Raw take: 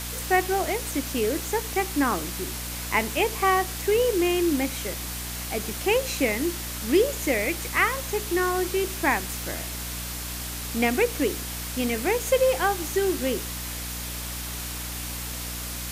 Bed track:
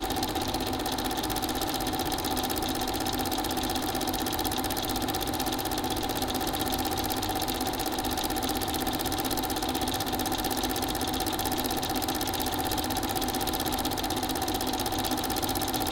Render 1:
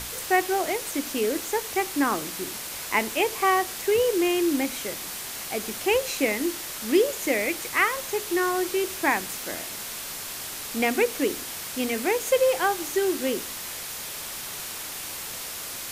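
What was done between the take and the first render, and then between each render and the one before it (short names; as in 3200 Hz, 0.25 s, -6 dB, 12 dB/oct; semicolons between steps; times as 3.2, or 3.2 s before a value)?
notches 60/120/180/240/300 Hz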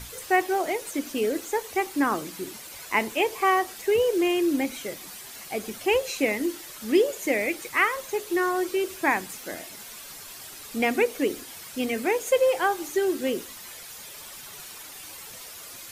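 denoiser 10 dB, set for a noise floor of -36 dBFS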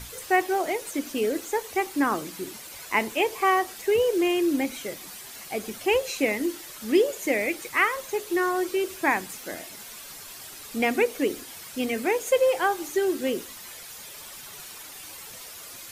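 nothing audible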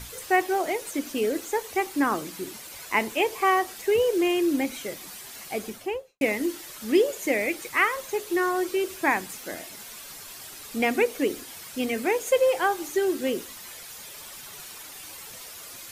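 5.58–6.21 studio fade out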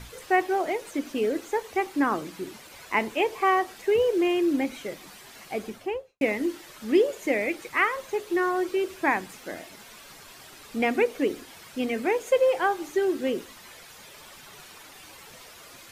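high shelf 5300 Hz -12 dB; notches 50/100 Hz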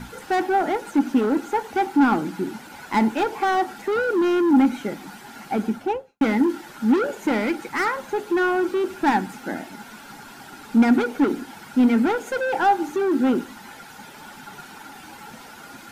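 hard clip -25.5 dBFS, distortion -7 dB; small resonant body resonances 230/830/1400 Hz, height 16 dB, ringing for 25 ms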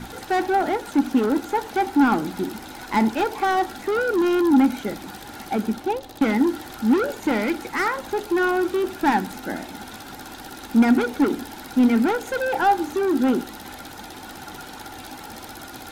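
add bed track -11.5 dB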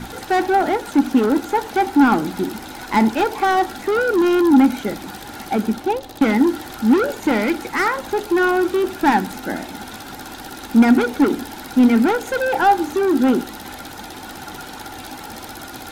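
gain +4 dB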